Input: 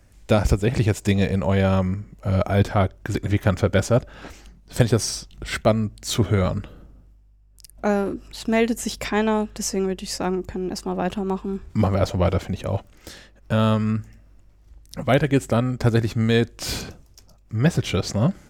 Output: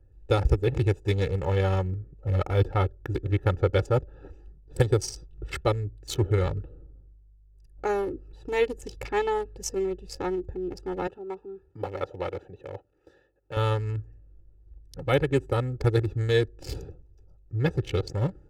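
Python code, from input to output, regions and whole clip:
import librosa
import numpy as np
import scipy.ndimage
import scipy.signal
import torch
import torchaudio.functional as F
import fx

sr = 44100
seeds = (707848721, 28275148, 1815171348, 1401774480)

y = fx.chain(x, sr, fx.highpass(hz=600.0, slope=6),
    fx.high_shelf(hz=4600.0, db=-5.0), at=(11.07, 13.57))
y = fx.wiener(y, sr, points=41)
y = y + 0.92 * np.pad(y, (int(2.3 * sr / 1000.0), 0))[:len(y)]
y = y * librosa.db_to_amplitude(-6.0)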